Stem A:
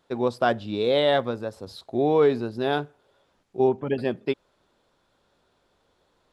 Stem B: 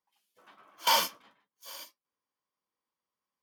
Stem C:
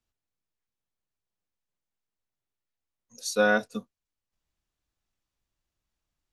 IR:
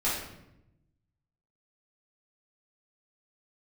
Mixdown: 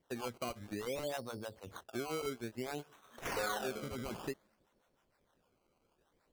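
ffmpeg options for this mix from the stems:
-filter_complex "[0:a]acrossover=split=650[a][b];[a]aeval=exprs='val(0)*(1-1/2+1/2*cos(2*PI*6.5*n/s))':c=same[c];[b]aeval=exprs='val(0)*(1-1/2-1/2*cos(2*PI*6.5*n/s))':c=same[d];[c][d]amix=inputs=2:normalize=0,volume=-3.5dB[e];[1:a]equalizer=f=7.2k:t=o:w=0.31:g=15,acompressor=threshold=-37dB:ratio=2,adelay=2450,volume=-6.5dB,asplit=2[f][g];[g]volume=-19.5dB[h];[2:a]highpass=340,volume=-3.5dB,asplit=2[i][j];[j]volume=-12dB[k];[e][i]amix=inputs=2:normalize=0,highshelf=f=5.7k:g=-6.5,acompressor=threshold=-39dB:ratio=1.5,volume=0dB[l];[3:a]atrim=start_sample=2205[m];[h][k]amix=inputs=2:normalize=0[n];[n][m]afir=irnorm=-1:irlink=0[o];[f][l][o]amix=inputs=3:normalize=0,acrusher=samples=17:mix=1:aa=0.000001:lfo=1:lforange=17:lforate=0.57,acompressor=threshold=-38dB:ratio=2.5"

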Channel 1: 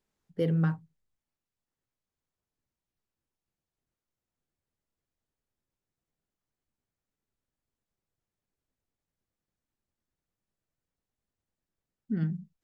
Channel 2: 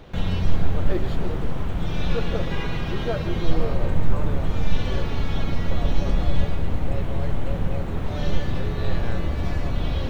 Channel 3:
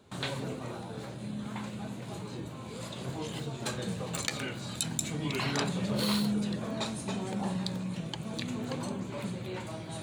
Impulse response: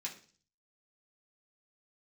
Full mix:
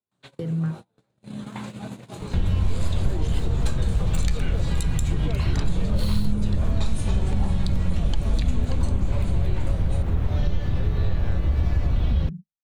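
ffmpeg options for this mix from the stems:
-filter_complex "[0:a]volume=0.5dB[a];[1:a]adelay=2200,volume=2.5dB[b];[2:a]highpass=47,dynaudnorm=f=320:g=7:m=8dB,volume=-1.5dB[c];[a][b]amix=inputs=2:normalize=0,equalizer=f=61:t=o:w=2:g=10,acompressor=threshold=-17dB:ratio=6,volume=0dB[d];[c][d]amix=inputs=2:normalize=0,agate=range=-36dB:threshold=-32dB:ratio=16:detection=peak,acrossover=split=170[e][f];[f]acompressor=threshold=-32dB:ratio=6[g];[e][g]amix=inputs=2:normalize=0"

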